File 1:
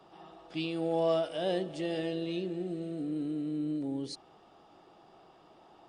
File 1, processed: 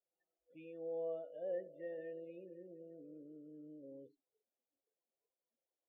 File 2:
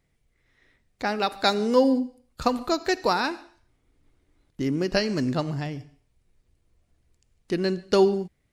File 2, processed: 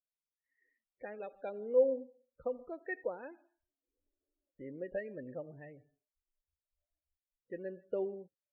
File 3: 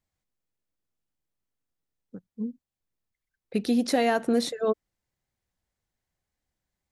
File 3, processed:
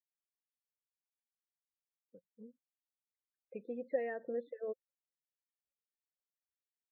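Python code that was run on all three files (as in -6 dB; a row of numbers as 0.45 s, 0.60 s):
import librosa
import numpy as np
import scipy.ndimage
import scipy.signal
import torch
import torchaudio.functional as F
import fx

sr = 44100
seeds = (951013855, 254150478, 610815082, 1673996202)

y = fx.spec_topn(x, sr, count=32)
y = fx.formant_cascade(y, sr, vowel='e')
y = fx.noise_reduce_blind(y, sr, reduce_db=24)
y = y * 10.0 ** (-4.5 / 20.0)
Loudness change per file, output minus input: -13.5 LU, -13.0 LU, -14.0 LU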